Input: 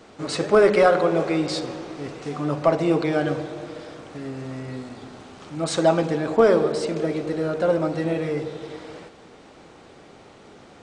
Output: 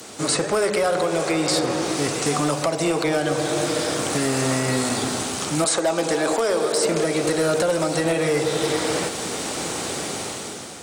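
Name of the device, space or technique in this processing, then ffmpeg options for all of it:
FM broadcast chain: -filter_complex "[0:a]asettb=1/sr,asplit=3[a][b][c];[a]atrim=end=5.644[d];[b]atrim=start=5.64:end=6.85,asetpts=PTS-STARTPTS,afade=t=in:d=0.004:c=qsin,afade=t=out:st=1.206:d=0.004:c=qsin,highpass=280[e];[c]atrim=start=6.846[f];[d][e]acrossfade=d=0.004:c1=hsin:c2=qsin[g];[g][f]acrossfade=d=0.004:c1=qsin:c2=hsin,highpass=76,dynaudnorm=f=310:g=5:m=12dB,acrossover=split=110|530|1100|2200[h][i][j][k][l];[h]acompressor=threshold=-45dB:ratio=4[m];[i]acompressor=threshold=-29dB:ratio=4[n];[j]acompressor=threshold=-26dB:ratio=4[o];[k]acompressor=threshold=-38dB:ratio=4[p];[l]acompressor=threshold=-44dB:ratio=4[q];[m][n][o][p][q]amix=inputs=5:normalize=0,aemphasis=mode=production:type=50fm,alimiter=limit=-17.5dB:level=0:latency=1:release=273,asoftclip=type=hard:threshold=-21dB,lowpass=f=15k:w=0.5412,lowpass=f=15k:w=1.3066,aemphasis=mode=production:type=50fm,volume=6.5dB"

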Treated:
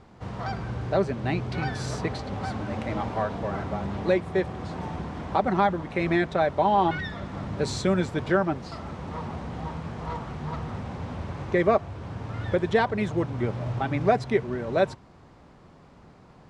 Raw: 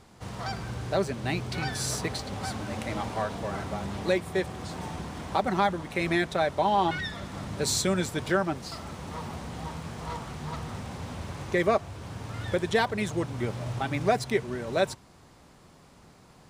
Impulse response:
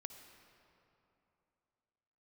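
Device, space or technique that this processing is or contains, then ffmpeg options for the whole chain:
through cloth: -af "lowpass=7.4k,highshelf=f=3.2k:g=-13.5,volume=3.5dB"

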